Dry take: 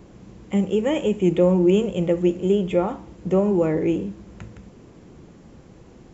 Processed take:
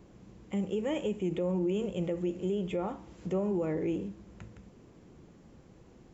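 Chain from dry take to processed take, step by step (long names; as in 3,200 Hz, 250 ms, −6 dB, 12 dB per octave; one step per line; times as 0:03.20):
brickwall limiter −14.5 dBFS, peak gain reduction 7 dB
0:02.04–0:04.08: one half of a high-frequency compander encoder only
level −9 dB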